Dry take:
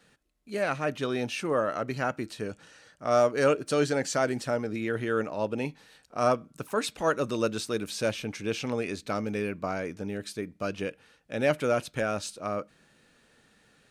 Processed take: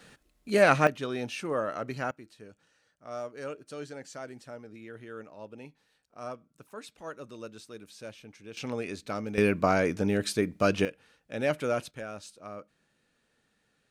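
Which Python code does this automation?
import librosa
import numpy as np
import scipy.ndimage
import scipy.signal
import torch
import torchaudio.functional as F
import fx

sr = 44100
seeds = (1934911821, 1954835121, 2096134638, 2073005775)

y = fx.gain(x, sr, db=fx.steps((0.0, 8.0), (0.87, -3.5), (2.11, -15.0), (8.57, -3.5), (9.38, 7.5), (10.85, -3.0), (11.91, -10.5)))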